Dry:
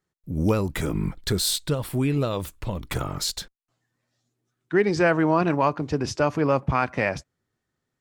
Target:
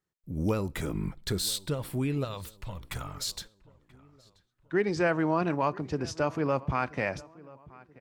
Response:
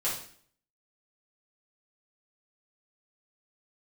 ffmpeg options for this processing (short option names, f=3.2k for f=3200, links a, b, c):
-filter_complex "[0:a]asettb=1/sr,asplit=3[a][b][c];[a]atrim=end=2.244[d];[b]atrim=start=2.24:end=3.35,asetpts=PTS-STARTPTS,afade=t=in:d=0.004:c=qsin,afade=t=out:st=1.106:d=0.004:c=qsin,equalizer=f=320:t=o:w=1.6:g=-13.5[e];[c]atrim=start=3.346[f];[d][e]acrossfade=d=0.004:c1=hsin:c2=qsin[g];[g][f]acrossfade=d=0.004:c1=qsin:c2=hsin,asplit=2[h][i];[i]adelay=982,lowpass=f=2.7k:p=1,volume=-22dB,asplit=2[j][k];[k]adelay=982,lowpass=f=2.7k:p=1,volume=0.42,asplit=2[l][m];[m]adelay=982,lowpass=f=2.7k:p=1,volume=0.42[n];[h][j][l][n]amix=inputs=4:normalize=0,asplit=2[o][p];[1:a]atrim=start_sample=2205[q];[p][q]afir=irnorm=-1:irlink=0,volume=-29dB[r];[o][r]amix=inputs=2:normalize=0,volume=-6.5dB"